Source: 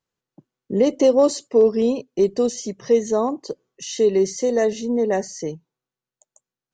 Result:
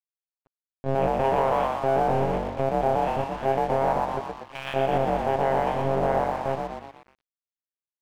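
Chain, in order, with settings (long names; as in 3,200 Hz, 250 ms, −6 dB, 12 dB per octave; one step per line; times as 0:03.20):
notch filter 740 Hz, Q 12
half-wave rectification
rotating-speaker cabinet horn 0.7 Hz, later 8 Hz, at 0:03.06
one-pitch LPC vocoder at 8 kHz 160 Hz
speed change −16%
low shelf with overshoot 460 Hz −12.5 dB, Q 3
downward compressor 2.5 to 1, threshold −30 dBFS, peak gain reduction 10 dB
parametric band 220 Hz +9 dB 2.4 octaves
echo with shifted repeats 120 ms, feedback 58%, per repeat +50 Hz, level −4 dB
brickwall limiter −21 dBFS, peak gain reduction 8.5 dB
dead-zone distortion −51 dBFS
level +8.5 dB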